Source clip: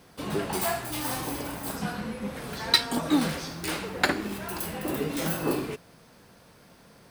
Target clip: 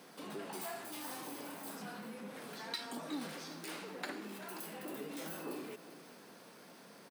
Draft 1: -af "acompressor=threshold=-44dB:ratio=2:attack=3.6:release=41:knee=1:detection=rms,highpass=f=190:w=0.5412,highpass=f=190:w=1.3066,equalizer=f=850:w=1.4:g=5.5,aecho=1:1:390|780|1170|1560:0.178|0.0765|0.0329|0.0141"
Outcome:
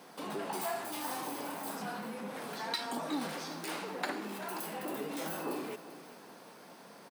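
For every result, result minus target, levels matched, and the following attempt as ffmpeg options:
compressor: peak gain reduction -4.5 dB; 1000 Hz band +3.0 dB
-af "acompressor=threshold=-53dB:ratio=2:attack=3.6:release=41:knee=1:detection=rms,highpass=f=190:w=0.5412,highpass=f=190:w=1.3066,equalizer=f=850:w=1.4:g=5.5,aecho=1:1:390|780|1170|1560:0.178|0.0765|0.0329|0.0141"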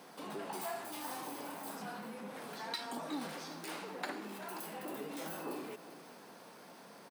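1000 Hz band +3.0 dB
-af "acompressor=threshold=-53dB:ratio=2:attack=3.6:release=41:knee=1:detection=rms,highpass=f=190:w=0.5412,highpass=f=190:w=1.3066,aecho=1:1:390|780|1170|1560:0.178|0.0765|0.0329|0.0141"

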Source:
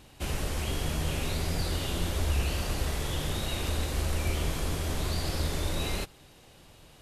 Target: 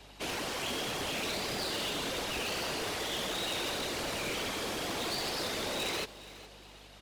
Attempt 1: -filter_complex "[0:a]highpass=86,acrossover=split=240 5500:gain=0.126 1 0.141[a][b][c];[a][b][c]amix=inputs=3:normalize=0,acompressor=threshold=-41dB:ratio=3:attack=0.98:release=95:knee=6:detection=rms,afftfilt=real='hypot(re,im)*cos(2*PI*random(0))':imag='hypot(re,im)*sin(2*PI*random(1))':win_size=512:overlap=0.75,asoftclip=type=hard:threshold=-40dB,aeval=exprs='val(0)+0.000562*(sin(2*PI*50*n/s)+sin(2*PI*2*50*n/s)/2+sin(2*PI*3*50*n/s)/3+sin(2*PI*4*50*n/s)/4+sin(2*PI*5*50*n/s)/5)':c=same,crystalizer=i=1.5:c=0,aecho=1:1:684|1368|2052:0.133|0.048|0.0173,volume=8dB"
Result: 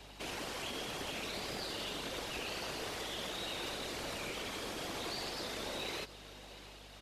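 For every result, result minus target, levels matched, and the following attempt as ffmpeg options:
echo 0.269 s late; compressor: peak gain reduction +9 dB
-filter_complex "[0:a]highpass=86,acrossover=split=240 5500:gain=0.126 1 0.141[a][b][c];[a][b][c]amix=inputs=3:normalize=0,acompressor=threshold=-41dB:ratio=3:attack=0.98:release=95:knee=6:detection=rms,afftfilt=real='hypot(re,im)*cos(2*PI*random(0))':imag='hypot(re,im)*sin(2*PI*random(1))':win_size=512:overlap=0.75,asoftclip=type=hard:threshold=-40dB,aeval=exprs='val(0)+0.000562*(sin(2*PI*50*n/s)+sin(2*PI*2*50*n/s)/2+sin(2*PI*3*50*n/s)/3+sin(2*PI*4*50*n/s)/4+sin(2*PI*5*50*n/s)/5)':c=same,crystalizer=i=1.5:c=0,aecho=1:1:415|830|1245:0.133|0.048|0.0173,volume=8dB"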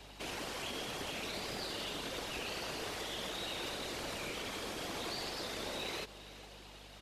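compressor: peak gain reduction +9 dB
-filter_complex "[0:a]highpass=86,acrossover=split=240 5500:gain=0.126 1 0.141[a][b][c];[a][b][c]amix=inputs=3:normalize=0,afftfilt=real='hypot(re,im)*cos(2*PI*random(0))':imag='hypot(re,im)*sin(2*PI*random(1))':win_size=512:overlap=0.75,asoftclip=type=hard:threshold=-40dB,aeval=exprs='val(0)+0.000562*(sin(2*PI*50*n/s)+sin(2*PI*2*50*n/s)/2+sin(2*PI*3*50*n/s)/3+sin(2*PI*4*50*n/s)/4+sin(2*PI*5*50*n/s)/5)':c=same,crystalizer=i=1.5:c=0,aecho=1:1:415|830|1245:0.133|0.048|0.0173,volume=8dB"

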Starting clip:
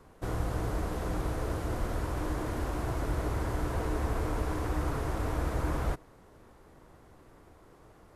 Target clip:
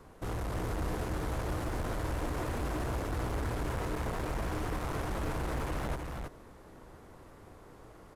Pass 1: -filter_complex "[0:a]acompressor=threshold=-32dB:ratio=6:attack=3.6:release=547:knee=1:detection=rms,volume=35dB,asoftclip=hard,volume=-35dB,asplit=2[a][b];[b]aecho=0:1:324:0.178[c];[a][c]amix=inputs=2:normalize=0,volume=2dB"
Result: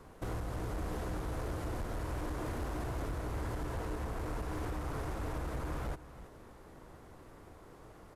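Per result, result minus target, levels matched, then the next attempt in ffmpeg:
compressor: peak gain reduction +9.5 dB; echo-to-direct -10.5 dB
-filter_complex "[0:a]volume=35dB,asoftclip=hard,volume=-35dB,asplit=2[a][b];[b]aecho=0:1:324:0.178[c];[a][c]amix=inputs=2:normalize=0,volume=2dB"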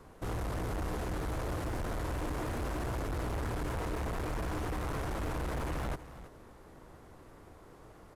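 echo-to-direct -10.5 dB
-filter_complex "[0:a]volume=35dB,asoftclip=hard,volume=-35dB,asplit=2[a][b];[b]aecho=0:1:324:0.596[c];[a][c]amix=inputs=2:normalize=0,volume=2dB"

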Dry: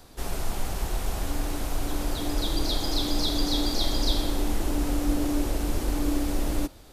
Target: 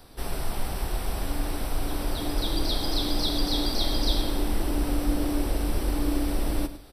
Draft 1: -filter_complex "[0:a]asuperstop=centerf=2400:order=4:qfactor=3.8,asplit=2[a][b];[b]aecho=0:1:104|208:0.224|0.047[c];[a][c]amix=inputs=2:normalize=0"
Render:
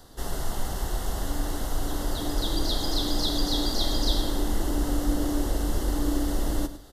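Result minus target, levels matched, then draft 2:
8000 Hz band +2.5 dB
-filter_complex "[0:a]asuperstop=centerf=6800:order=4:qfactor=3.8,asplit=2[a][b];[b]aecho=0:1:104|208:0.224|0.047[c];[a][c]amix=inputs=2:normalize=0"

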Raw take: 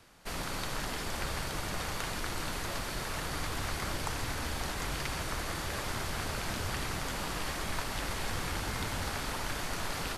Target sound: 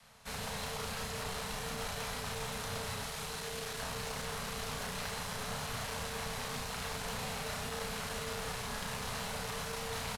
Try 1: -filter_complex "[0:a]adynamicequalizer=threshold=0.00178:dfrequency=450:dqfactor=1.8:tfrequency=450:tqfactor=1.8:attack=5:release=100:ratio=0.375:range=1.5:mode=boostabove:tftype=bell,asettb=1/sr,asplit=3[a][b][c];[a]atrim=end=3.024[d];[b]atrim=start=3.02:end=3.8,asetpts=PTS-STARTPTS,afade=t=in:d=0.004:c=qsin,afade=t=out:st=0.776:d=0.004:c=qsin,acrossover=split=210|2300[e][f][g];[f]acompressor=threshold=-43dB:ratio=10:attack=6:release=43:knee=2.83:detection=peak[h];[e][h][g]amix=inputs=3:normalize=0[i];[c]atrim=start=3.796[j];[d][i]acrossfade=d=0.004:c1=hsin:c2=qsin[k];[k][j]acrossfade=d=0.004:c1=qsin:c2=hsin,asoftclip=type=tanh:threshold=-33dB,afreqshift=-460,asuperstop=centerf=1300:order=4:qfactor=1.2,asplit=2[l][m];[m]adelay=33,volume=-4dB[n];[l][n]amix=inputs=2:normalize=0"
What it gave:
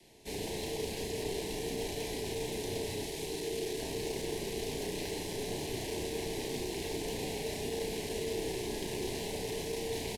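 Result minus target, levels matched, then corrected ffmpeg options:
1000 Hz band -7.0 dB
-filter_complex "[0:a]adynamicequalizer=threshold=0.00178:dfrequency=450:dqfactor=1.8:tfrequency=450:tqfactor=1.8:attack=5:release=100:ratio=0.375:range=1.5:mode=boostabove:tftype=bell,asettb=1/sr,asplit=3[a][b][c];[a]atrim=end=3.024[d];[b]atrim=start=3.02:end=3.8,asetpts=PTS-STARTPTS,afade=t=in:d=0.004:c=qsin,afade=t=out:st=0.776:d=0.004:c=qsin,acrossover=split=210|2300[e][f][g];[f]acompressor=threshold=-43dB:ratio=10:attack=6:release=43:knee=2.83:detection=peak[h];[e][h][g]amix=inputs=3:normalize=0[i];[c]atrim=start=3.796[j];[d][i]acrossfade=d=0.004:c1=hsin:c2=qsin[k];[k][j]acrossfade=d=0.004:c1=qsin:c2=hsin,asoftclip=type=tanh:threshold=-33dB,afreqshift=-460,asuperstop=centerf=340:order=4:qfactor=1.2,asplit=2[l][m];[m]adelay=33,volume=-4dB[n];[l][n]amix=inputs=2:normalize=0"

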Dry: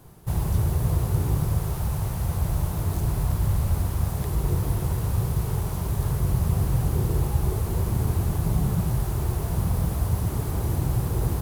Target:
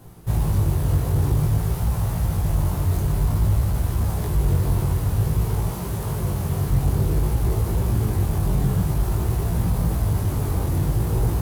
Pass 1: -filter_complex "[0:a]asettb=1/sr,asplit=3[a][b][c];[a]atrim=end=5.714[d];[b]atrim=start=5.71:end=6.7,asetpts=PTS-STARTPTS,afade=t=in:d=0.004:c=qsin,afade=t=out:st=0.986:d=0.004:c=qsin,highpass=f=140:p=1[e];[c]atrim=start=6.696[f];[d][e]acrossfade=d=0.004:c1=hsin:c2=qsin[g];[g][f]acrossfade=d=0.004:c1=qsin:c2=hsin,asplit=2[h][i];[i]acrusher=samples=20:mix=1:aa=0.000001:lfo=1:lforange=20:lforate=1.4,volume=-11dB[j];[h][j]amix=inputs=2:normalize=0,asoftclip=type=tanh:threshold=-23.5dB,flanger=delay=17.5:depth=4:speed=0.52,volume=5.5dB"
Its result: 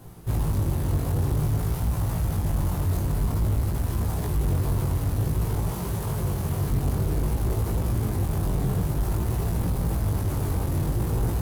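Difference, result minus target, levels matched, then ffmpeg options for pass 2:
soft clip: distortion +9 dB
-filter_complex "[0:a]asettb=1/sr,asplit=3[a][b][c];[a]atrim=end=5.714[d];[b]atrim=start=5.71:end=6.7,asetpts=PTS-STARTPTS,afade=t=in:d=0.004:c=qsin,afade=t=out:st=0.986:d=0.004:c=qsin,highpass=f=140:p=1[e];[c]atrim=start=6.696[f];[d][e]acrossfade=d=0.004:c1=hsin:c2=qsin[g];[g][f]acrossfade=d=0.004:c1=qsin:c2=hsin,asplit=2[h][i];[i]acrusher=samples=20:mix=1:aa=0.000001:lfo=1:lforange=20:lforate=1.4,volume=-11dB[j];[h][j]amix=inputs=2:normalize=0,asoftclip=type=tanh:threshold=-15dB,flanger=delay=17.5:depth=4:speed=0.52,volume=5.5dB"

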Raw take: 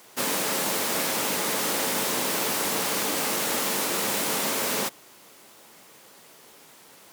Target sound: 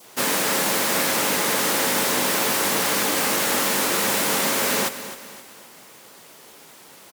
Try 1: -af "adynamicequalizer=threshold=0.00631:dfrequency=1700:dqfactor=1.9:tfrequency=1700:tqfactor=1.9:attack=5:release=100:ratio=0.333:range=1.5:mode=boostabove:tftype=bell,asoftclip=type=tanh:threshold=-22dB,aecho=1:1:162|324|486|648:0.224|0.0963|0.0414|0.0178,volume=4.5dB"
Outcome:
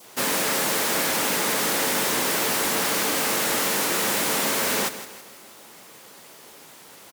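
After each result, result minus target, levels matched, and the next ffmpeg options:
soft clip: distortion +13 dB; echo 98 ms early
-af "adynamicequalizer=threshold=0.00631:dfrequency=1700:dqfactor=1.9:tfrequency=1700:tqfactor=1.9:attack=5:release=100:ratio=0.333:range=1.5:mode=boostabove:tftype=bell,asoftclip=type=tanh:threshold=-13.5dB,aecho=1:1:162|324|486|648:0.224|0.0963|0.0414|0.0178,volume=4.5dB"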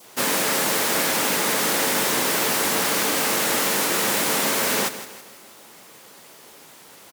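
echo 98 ms early
-af "adynamicequalizer=threshold=0.00631:dfrequency=1700:dqfactor=1.9:tfrequency=1700:tqfactor=1.9:attack=5:release=100:ratio=0.333:range=1.5:mode=boostabove:tftype=bell,asoftclip=type=tanh:threshold=-13.5dB,aecho=1:1:260|520|780|1040:0.224|0.0963|0.0414|0.0178,volume=4.5dB"

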